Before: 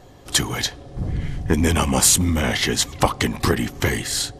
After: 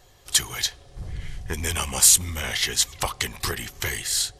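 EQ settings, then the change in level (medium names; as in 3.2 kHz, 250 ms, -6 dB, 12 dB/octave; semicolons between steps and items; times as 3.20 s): amplifier tone stack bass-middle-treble 10-0-10; peaking EQ 340 Hz +13.5 dB 1 oct; treble shelf 10 kHz +3.5 dB; 0.0 dB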